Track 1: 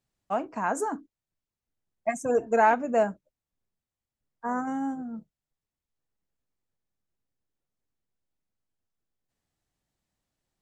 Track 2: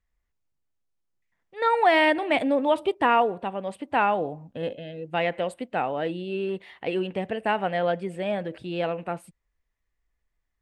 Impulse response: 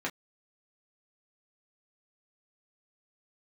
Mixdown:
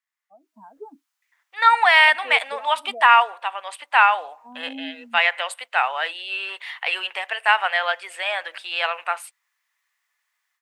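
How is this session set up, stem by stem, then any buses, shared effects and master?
−19.5 dB, 0.00 s, no send, downward compressor, threshold −27 dBFS, peak gain reduction 11 dB; decimation without filtering 5×; every bin expanded away from the loudest bin 2.5 to 1
−1.0 dB, 0.00 s, no send, high-pass filter 1,000 Hz 24 dB per octave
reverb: not used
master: automatic gain control gain up to 15 dB

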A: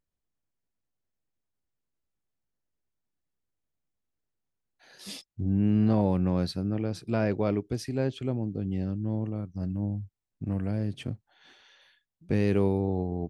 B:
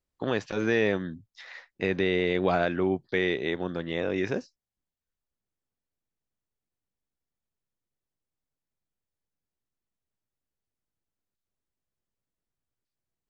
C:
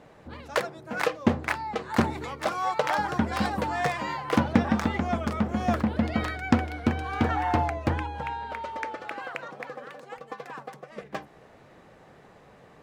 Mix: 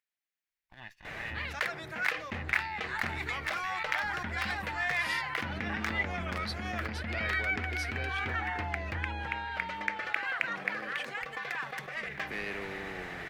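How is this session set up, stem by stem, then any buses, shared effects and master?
−0.5 dB, 0.00 s, no send, Bessel high-pass filter 310 Hz, order 8; brickwall limiter −24 dBFS, peak gain reduction 6 dB
−15.0 dB, 0.50 s, no send, lower of the sound and its delayed copy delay 1.1 ms; two-band tremolo in antiphase 5.9 Hz, depth 50%, crossover 1,300 Hz
−11.5 dB, 1.05 s, no send, envelope flattener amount 70%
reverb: not used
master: octave-band graphic EQ 125/250/500/1,000/2,000/8,000 Hz −6/−10/−8/−6/+9/−5 dB

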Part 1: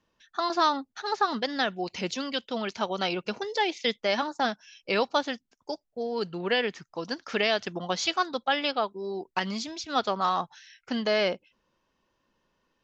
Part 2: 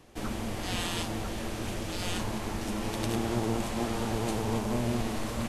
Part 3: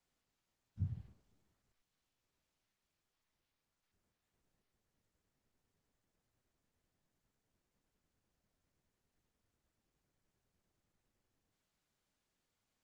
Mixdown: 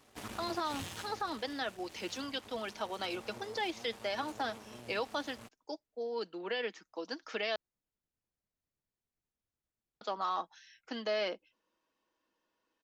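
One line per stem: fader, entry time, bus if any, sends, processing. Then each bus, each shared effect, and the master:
−8.0 dB, 0.00 s, muted 0:07.56–0:10.01, bus A, no send, Butterworth high-pass 220 Hz 48 dB per octave; comb filter 6.3 ms, depth 37%
+2.0 dB, 0.00 s, bus A, no send, low-shelf EQ 370 Hz −8 dB; notch comb filter 170 Hz; half-wave rectification; automatic ducking −13 dB, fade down 1.70 s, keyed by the first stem
−10.0 dB, 0.00 s, no bus, no send, no processing
bus A: 0.0 dB, high-pass filter 53 Hz; brickwall limiter −25 dBFS, peak gain reduction 9 dB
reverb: not used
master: no processing

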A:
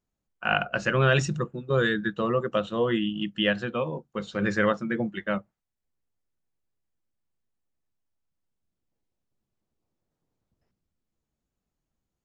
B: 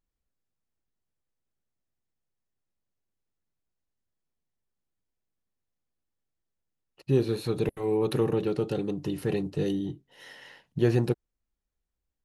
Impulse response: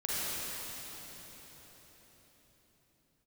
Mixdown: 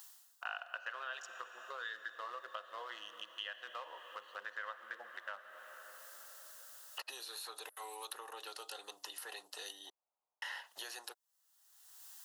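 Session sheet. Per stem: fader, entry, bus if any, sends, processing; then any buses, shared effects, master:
+2.5 dB, 0.00 s, send −17.5 dB, adaptive Wiener filter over 25 samples; downward compressor, threshold −25 dBFS, peak gain reduction 9 dB
+1.0 dB, 0.00 s, muted 0:09.90–0:10.42, no send, high-shelf EQ 4,200 Hz +12 dB; multiband upward and downward compressor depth 100%; automatic ducking −18 dB, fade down 0.40 s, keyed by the first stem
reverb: on, RT60 5.0 s, pre-delay 37 ms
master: high-pass filter 820 Hz 24 dB per octave; parametric band 2,300 Hz −13.5 dB 0.22 octaves; downward compressor 2 to 1, threshold −50 dBFS, peak gain reduction 14.5 dB

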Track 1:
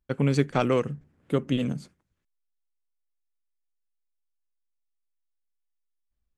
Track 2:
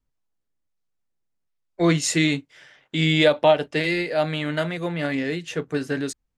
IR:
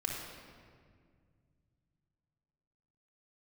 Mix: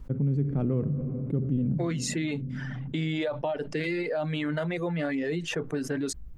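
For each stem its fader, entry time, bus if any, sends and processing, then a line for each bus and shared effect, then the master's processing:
−2.5 dB, 0.00 s, send −17 dB, drawn EQ curve 170 Hz 0 dB, 800 Hz −19 dB, 6,500 Hz −28 dB
−10.0 dB, 0.00 s, no send, reverb reduction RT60 0.94 s; downward compressor, threshold −26 dBFS, peak gain reduction 13.5 dB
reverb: on, RT60 2.0 s, pre-delay 3 ms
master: high-shelf EQ 2,100 Hz −11.5 dB; envelope flattener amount 70%

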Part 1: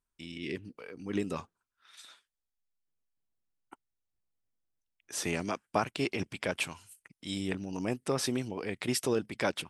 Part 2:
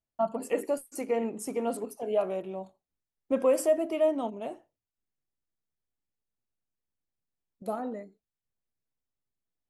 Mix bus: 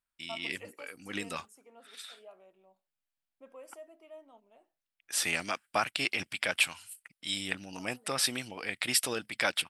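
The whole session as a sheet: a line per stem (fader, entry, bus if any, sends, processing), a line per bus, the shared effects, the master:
−0.5 dB, 0.00 s, no send, thirty-one-band graphic EQ 400 Hz −7 dB, 1,000 Hz −5 dB, 6,300 Hz −8 dB
−13.0 dB, 0.10 s, no send, automatic ducking −11 dB, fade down 1.55 s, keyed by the first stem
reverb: not used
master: tilt shelving filter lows −9 dB, about 660 Hz; one half of a high-frequency compander decoder only

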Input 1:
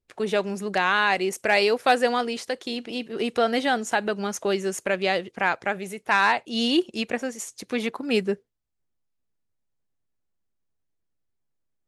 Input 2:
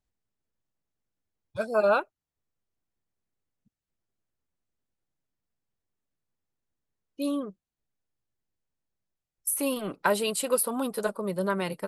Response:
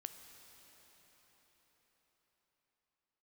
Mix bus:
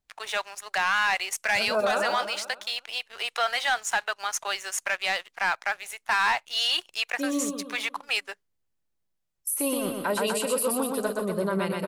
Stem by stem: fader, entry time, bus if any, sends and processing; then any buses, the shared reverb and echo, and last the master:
−3.5 dB, 0.00 s, no send, no echo send, high-pass filter 830 Hz 24 dB per octave; leveller curve on the samples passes 2
+0.5 dB, 0.00 s, no send, echo send −4 dB, no processing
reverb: not used
echo: repeating echo 122 ms, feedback 51%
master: brickwall limiter −16.5 dBFS, peak gain reduction 8.5 dB

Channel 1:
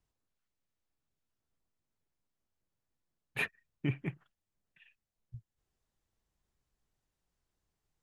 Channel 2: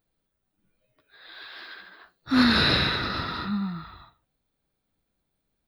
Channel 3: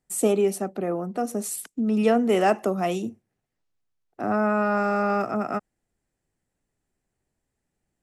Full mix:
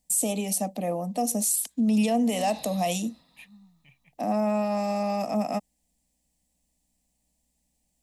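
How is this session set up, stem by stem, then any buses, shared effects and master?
−6.5 dB, 0.00 s, no send, guitar amp tone stack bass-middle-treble 10-0-10; mains hum 60 Hz, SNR 14 dB
−19.5 dB, 0.00 s, no send, expander for the loud parts 1.5 to 1, over −32 dBFS
+1.5 dB, 0.00 s, no send, high-shelf EQ 2,600 Hz +11.5 dB; brickwall limiter −16.5 dBFS, peak gain reduction 9.5 dB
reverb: not used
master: phaser with its sweep stopped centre 380 Hz, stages 6

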